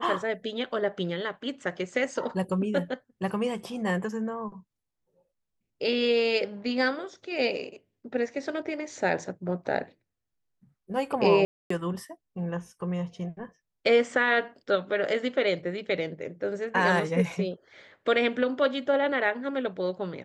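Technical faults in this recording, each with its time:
11.45–11.70 s: dropout 254 ms

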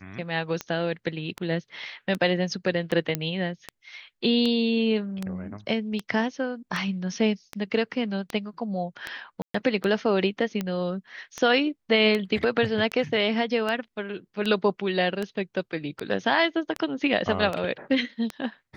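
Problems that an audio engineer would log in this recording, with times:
tick 78 rpm -15 dBFS
3.15 s: pop -10 dBFS
9.42–9.54 s: dropout 124 ms

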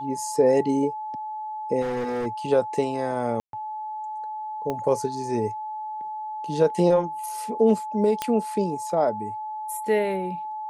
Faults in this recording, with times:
whine 860 Hz -30 dBFS
1.81–2.27 s: clipped -24.5 dBFS
3.40–3.53 s: dropout 132 ms
4.70 s: pop -16 dBFS
8.22 s: pop -10 dBFS

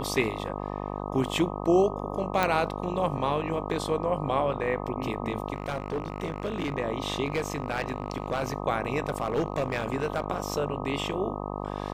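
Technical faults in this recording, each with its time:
buzz 50 Hz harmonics 25 -34 dBFS
2.43 s: pop
5.53–6.74 s: clipped -25 dBFS
7.25–8.53 s: clipped -22.5 dBFS
9.06–10.24 s: clipped -21 dBFS

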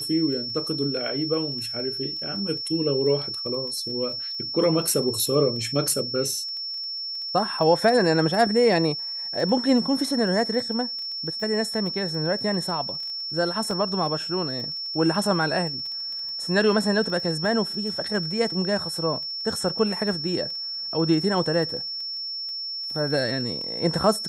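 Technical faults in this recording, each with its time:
crackle 14 per s -33 dBFS
whine 5.4 kHz -29 dBFS
13.71 s: dropout 2.3 ms

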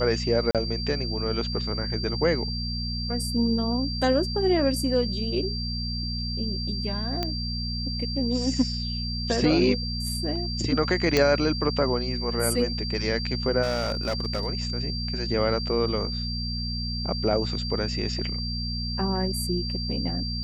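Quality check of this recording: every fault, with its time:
hum 60 Hz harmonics 4 -31 dBFS
whine 4.7 kHz -32 dBFS
0.51–0.55 s: dropout 37 ms
7.23 s: pop -13 dBFS
11.17 s: pop -7 dBFS
13.62–14.47 s: clipped -21.5 dBFS

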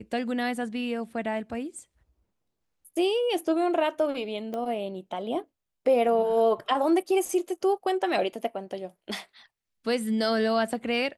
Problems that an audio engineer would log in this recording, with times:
4.54 s: pop -22 dBFS

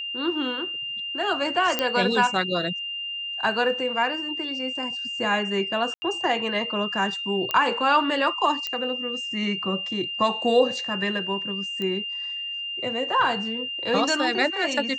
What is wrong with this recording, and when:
whine 2.8 kHz -29 dBFS
1.79 s: pop -7 dBFS
5.94–6.02 s: dropout 80 ms
7.51 s: pop -11 dBFS
8.67 s: pop -14 dBFS
11.82 s: pop -18 dBFS

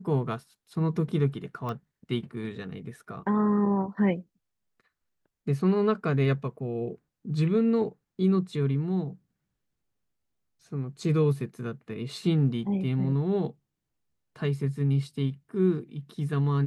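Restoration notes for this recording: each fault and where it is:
1.69 s: pop -23 dBFS

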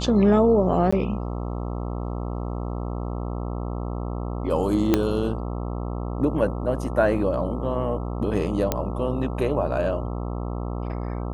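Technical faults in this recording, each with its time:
buzz 60 Hz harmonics 22 -29 dBFS
0.91–0.93 s: dropout 15 ms
4.94 s: pop -5 dBFS
8.72 s: pop -7 dBFS

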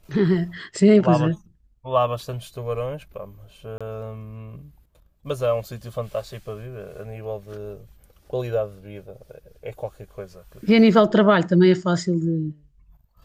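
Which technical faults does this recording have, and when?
3.78–3.81 s: dropout 26 ms

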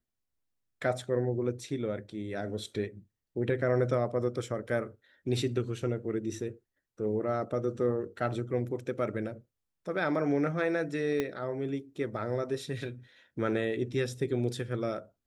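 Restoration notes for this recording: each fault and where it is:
11.20 s: pop -17 dBFS

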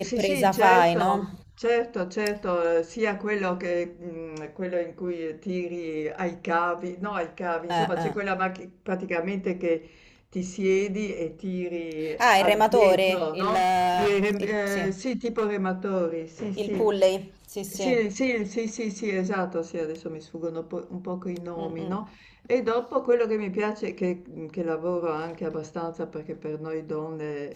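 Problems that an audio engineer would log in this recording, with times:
13.24–15.47 s: clipped -19.5 dBFS

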